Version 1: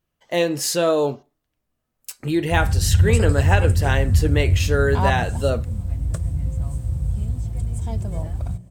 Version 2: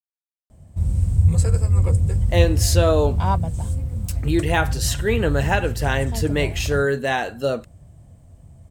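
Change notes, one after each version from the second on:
speech: entry +2.00 s; background: entry -1.75 s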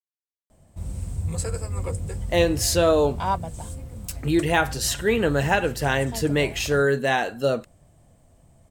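background: add bell 82 Hz -13 dB 2.6 oct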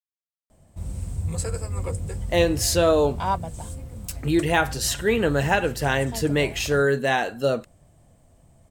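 none

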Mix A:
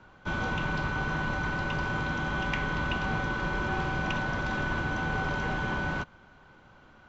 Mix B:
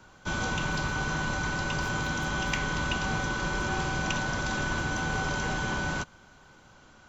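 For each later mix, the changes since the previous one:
master: remove LPF 2900 Hz 12 dB/oct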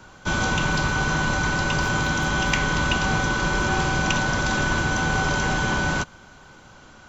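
speech +4.5 dB; background +7.5 dB

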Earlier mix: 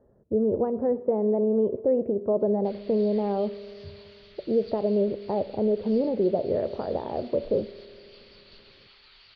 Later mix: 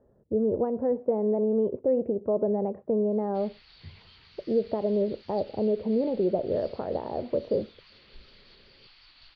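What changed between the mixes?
background: entry +0.70 s; reverb: off

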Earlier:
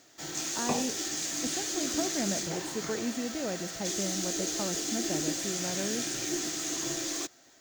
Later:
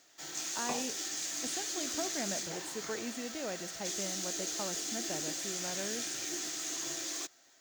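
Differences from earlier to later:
background -3.5 dB; master: add low shelf 410 Hz -11 dB

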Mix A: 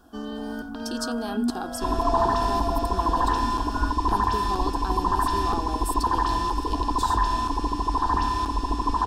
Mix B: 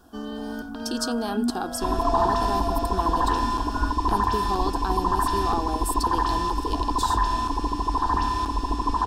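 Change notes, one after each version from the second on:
speech +3.5 dB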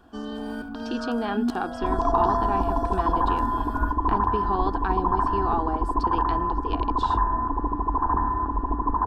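speech: add synth low-pass 2200 Hz, resonance Q 2.8; second sound: add steep low-pass 1600 Hz 48 dB/oct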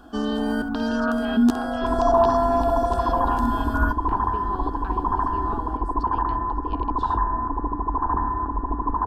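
speech -8.5 dB; first sound +10.0 dB; reverb: off

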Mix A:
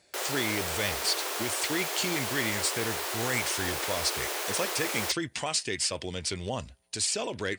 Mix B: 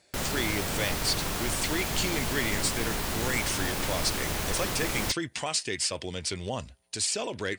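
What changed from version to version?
background: remove steep high-pass 350 Hz 48 dB/oct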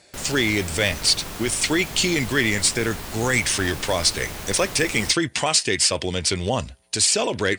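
speech +10.0 dB; background -3.0 dB

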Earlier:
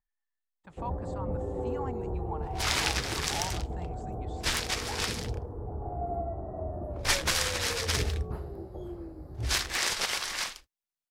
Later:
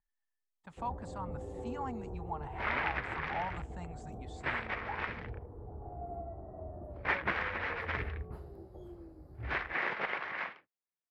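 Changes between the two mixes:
first sound -9.0 dB; second sound: add elliptic band-pass 140–2100 Hz, stop band 60 dB

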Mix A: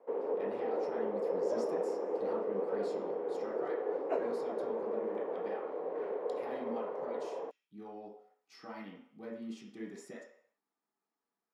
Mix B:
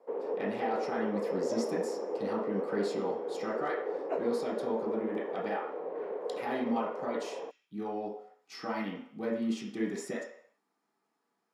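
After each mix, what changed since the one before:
speech +11.0 dB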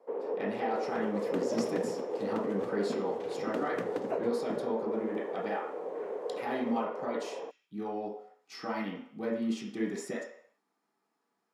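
second sound: unmuted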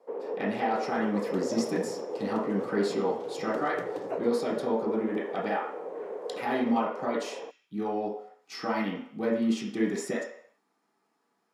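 speech +5.5 dB; second sound: add fixed phaser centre 340 Hz, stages 8

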